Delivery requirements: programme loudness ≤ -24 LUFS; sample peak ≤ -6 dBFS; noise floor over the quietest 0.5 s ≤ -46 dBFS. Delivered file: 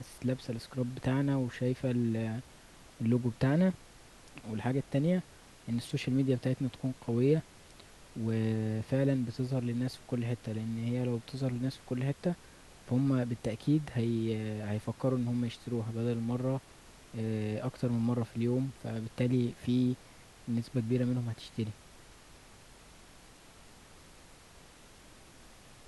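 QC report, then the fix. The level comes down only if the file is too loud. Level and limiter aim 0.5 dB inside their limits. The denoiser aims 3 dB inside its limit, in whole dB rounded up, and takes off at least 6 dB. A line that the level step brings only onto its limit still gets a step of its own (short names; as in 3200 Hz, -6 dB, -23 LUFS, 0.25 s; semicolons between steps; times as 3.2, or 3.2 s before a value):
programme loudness -33.0 LUFS: OK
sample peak -16.0 dBFS: OK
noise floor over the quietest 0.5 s -56 dBFS: OK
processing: none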